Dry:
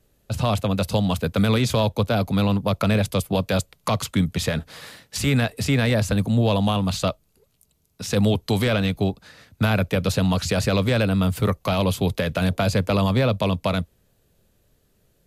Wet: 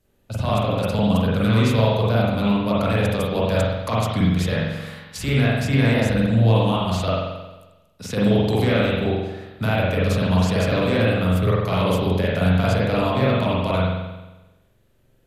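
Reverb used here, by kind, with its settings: spring tank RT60 1.1 s, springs 44 ms, chirp 70 ms, DRR -7 dB; gain -5.5 dB

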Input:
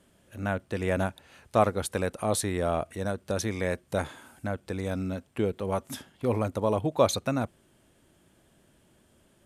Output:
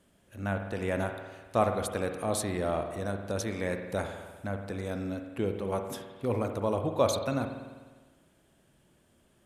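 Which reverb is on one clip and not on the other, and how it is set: spring tank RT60 1.4 s, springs 50 ms, chirp 45 ms, DRR 5.5 dB; gain -3.5 dB

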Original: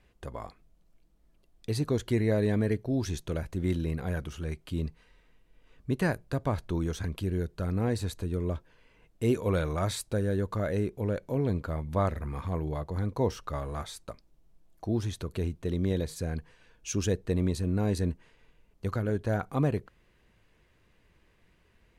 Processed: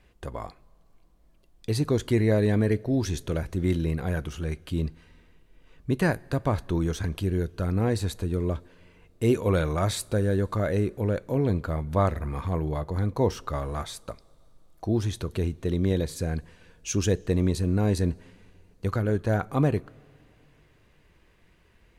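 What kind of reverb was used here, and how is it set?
two-slope reverb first 0.23 s, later 3 s, from -19 dB, DRR 18 dB; gain +4 dB

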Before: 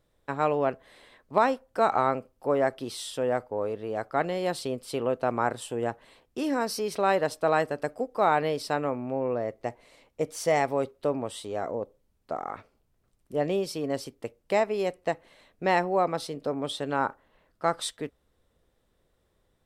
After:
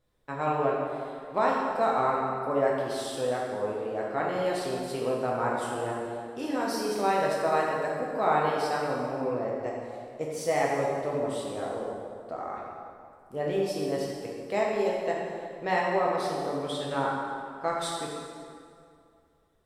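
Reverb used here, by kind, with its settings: plate-style reverb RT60 2.3 s, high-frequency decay 0.7×, DRR -4 dB; gain -6 dB

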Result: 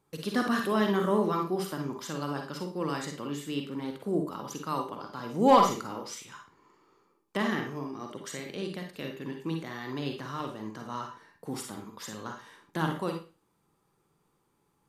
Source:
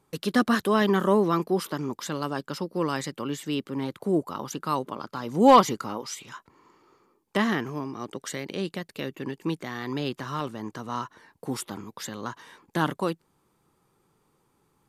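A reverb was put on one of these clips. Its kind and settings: Schroeder reverb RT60 0.34 s, DRR 3 dB; gain -6 dB

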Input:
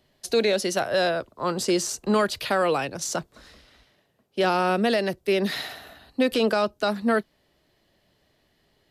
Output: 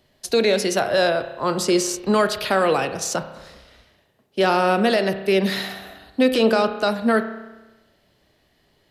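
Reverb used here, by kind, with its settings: spring tank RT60 1.1 s, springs 31 ms, chirp 30 ms, DRR 9 dB; gain +3.5 dB

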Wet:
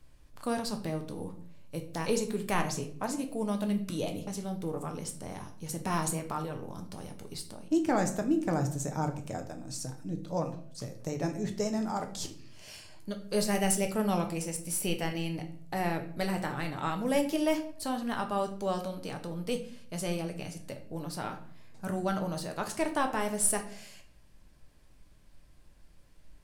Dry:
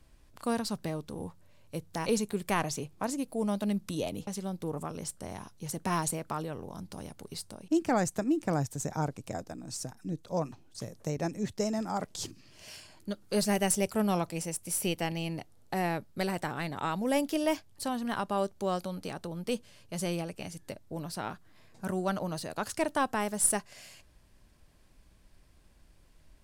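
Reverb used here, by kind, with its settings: shoebox room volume 69 m³, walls mixed, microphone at 0.43 m; gain -1.5 dB

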